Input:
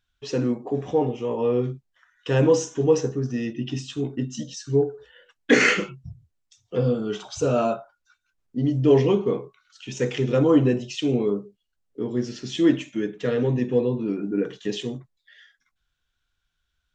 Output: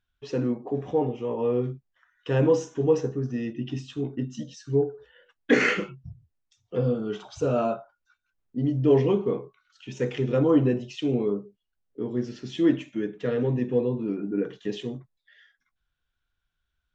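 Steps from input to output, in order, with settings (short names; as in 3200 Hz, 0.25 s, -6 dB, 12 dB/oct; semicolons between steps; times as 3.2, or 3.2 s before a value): LPF 2500 Hz 6 dB/oct; gain -2.5 dB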